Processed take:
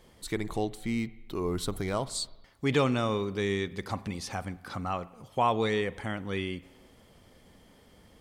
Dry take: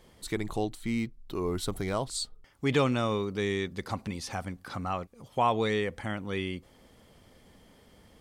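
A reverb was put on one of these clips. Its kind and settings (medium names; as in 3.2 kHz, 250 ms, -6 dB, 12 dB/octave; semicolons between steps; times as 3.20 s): spring tank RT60 1.1 s, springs 40/45/51 ms, chirp 60 ms, DRR 17.5 dB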